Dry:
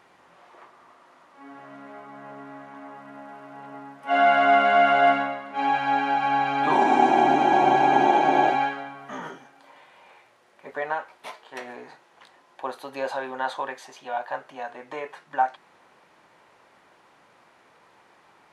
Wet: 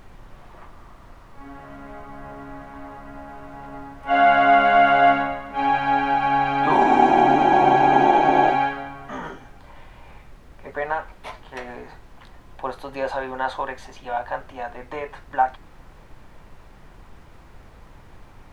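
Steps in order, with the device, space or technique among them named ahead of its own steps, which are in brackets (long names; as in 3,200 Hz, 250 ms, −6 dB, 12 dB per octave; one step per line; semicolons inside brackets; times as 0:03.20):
car interior (parametric band 110 Hz +8 dB 0.7 octaves; high-shelf EQ 4,800 Hz −7 dB; brown noise bed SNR 21 dB)
level +3 dB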